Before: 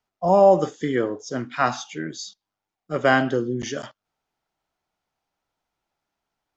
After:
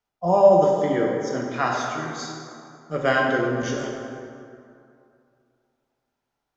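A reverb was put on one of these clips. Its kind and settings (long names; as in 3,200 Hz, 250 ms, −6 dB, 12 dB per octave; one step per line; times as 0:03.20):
dense smooth reverb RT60 2.5 s, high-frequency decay 0.55×, DRR −1 dB
level −3.5 dB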